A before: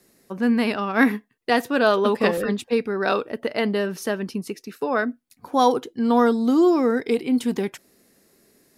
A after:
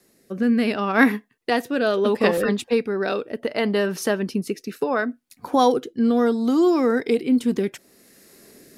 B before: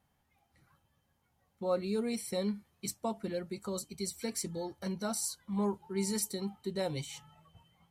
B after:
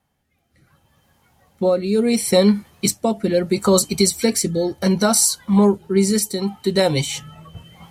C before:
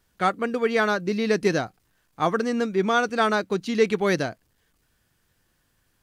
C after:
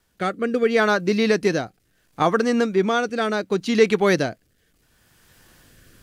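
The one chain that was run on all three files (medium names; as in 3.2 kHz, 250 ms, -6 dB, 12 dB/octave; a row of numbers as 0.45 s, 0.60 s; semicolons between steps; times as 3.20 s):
recorder AGC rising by 9.1 dB/s; rotary cabinet horn 0.7 Hz; bass shelf 170 Hz -3.5 dB; peak normalisation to -3 dBFS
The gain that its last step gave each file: +2.5 dB, +8.5 dB, +5.0 dB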